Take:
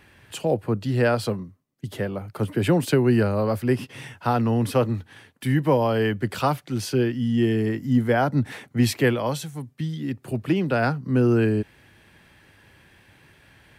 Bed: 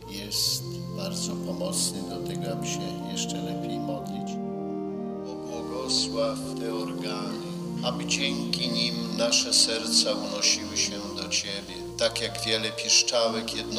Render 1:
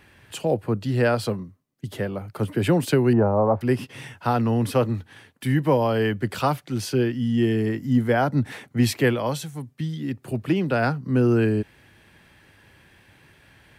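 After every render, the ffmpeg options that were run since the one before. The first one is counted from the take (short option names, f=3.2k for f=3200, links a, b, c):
-filter_complex "[0:a]asettb=1/sr,asplit=3[a][b][c];[a]atrim=end=3.134[d];[b]atrim=start=3.13:end=3.61,asetpts=PTS-STARTPTS,afade=t=in:d=0.004:c=qsin,afade=t=out:st=0.476:d=0.004:c=qsin,lowpass=f=870:t=q:w=3.2[e];[c]atrim=start=3.606[f];[d][e]acrossfade=d=0.004:c1=hsin:c2=qsin[g];[g][f]acrossfade=d=0.004:c1=qsin:c2=hsin"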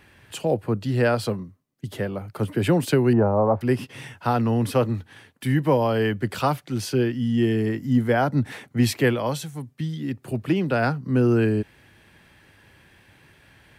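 -af anull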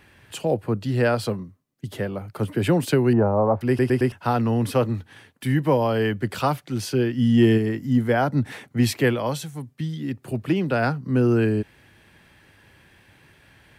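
-filter_complex "[0:a]asplit=3[a][b][c];[a]afade=t=out:st=7.17:d=0.02[d];[b]acontrast=26,afade=t=in:st=7.17:d=0.02,afade=t=out:st=7.57:d=0.02[e];[c]afade=t=in:st=7.57:d=0.02[f];[d][e][f]amix=inputs=3:normalize=0,asplit=5[g][h][i][j][k];[g]atrim=end=3.792[l];[h]atrim=start=3.678:end=3.792[m];[i]atrim=start=3.678:end=3.792[n];[j]atrim=start=3.678:end=3.792[o];[k]atrim=start=4.118[p];[l][m]acrossfade=d=0.004:c1=hsin:c2=hsin[q];[q][n]acrossfade=d=0.004:c1=hsin:c2=hsin[r];[r][o]acrossfade=d=0.004:c1=hsin:c2=hsin[s];[s][p]acrossfade=d=0.004:c1=hsin:c2=hsin"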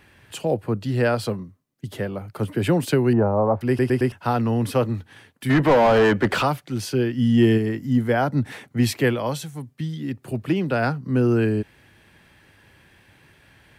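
-filter_complex "[0:a]asplit=3[a][b][c];[a]afade=t=out:st=5.49:d=0.02[d];[b]asplit=2[e][f];[f]highpass=f=720:p=1,volume=27dB,asoftclip=type=tanh:threshold=-8dB[g];[e][g]amix=inputs=2:normalize=0,lowpass=f=1.3k:p=1,volume=-6dB,afade=t=in:st=5.49:d=0.02,afade=t=out:st=6.42:d=0.02[h];[c]afade=t=in:st=6.42:d=0.02[i];[d][h][i]amix=inputs=3:normalize=0"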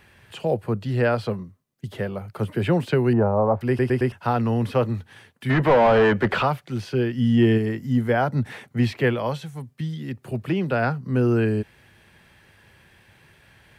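-filter_complex "[0:a]acrossover=split=3800[a][b];[b]acompressor=threshold=-51dB:ratio=4:attack=1:release=60[c];[a][c]amix=inputs=2:normalize=0,equalizer=f=290:w=7:g=-10"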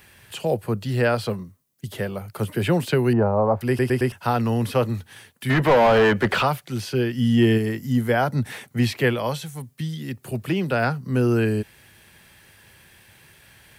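-af "crystalizer=i=2.5:c=0"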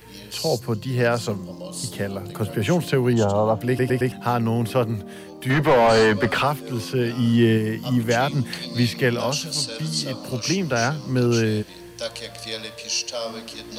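-filter_complex "[1:a]volume=-5dB[a];[0:a][a]amix=inputs=2:normalize=0"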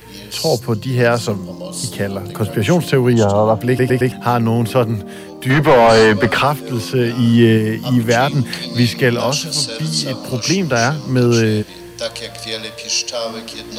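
-af "volume=6.5dB,alimiter=limit=-1dB:level=0:latency=1"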